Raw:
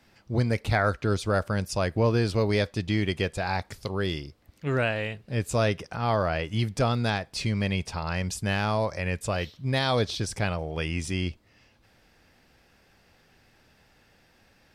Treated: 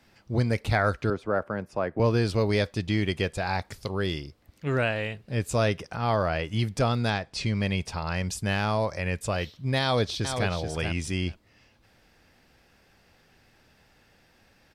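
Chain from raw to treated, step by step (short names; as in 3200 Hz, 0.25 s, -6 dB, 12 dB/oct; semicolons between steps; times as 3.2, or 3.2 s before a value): 1.1–2 three-band isolator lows -13 dB, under 190 Hz, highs -22 dB, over 2000 Hz; 7.13–7.62 LPF 7800 Hz 12 dB/oct; 9.81–10.49 echo throw 0.43 s, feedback 10%, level -7 dB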